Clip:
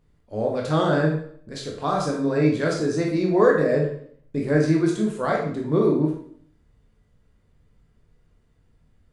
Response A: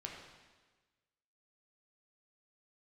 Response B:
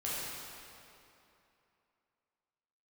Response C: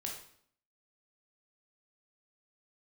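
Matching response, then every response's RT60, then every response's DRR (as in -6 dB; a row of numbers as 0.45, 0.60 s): C; 1.3, 2.9, 0.60 s; -1.0, -8.5, -1.0 dB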